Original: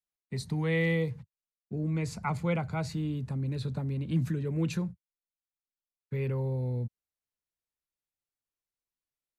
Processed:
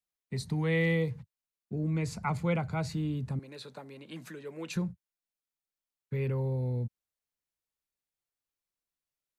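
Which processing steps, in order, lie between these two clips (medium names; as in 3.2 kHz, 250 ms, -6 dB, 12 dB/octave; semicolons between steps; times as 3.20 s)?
3.39–4.76 s: high-pass 510 Hz 12 dB/octave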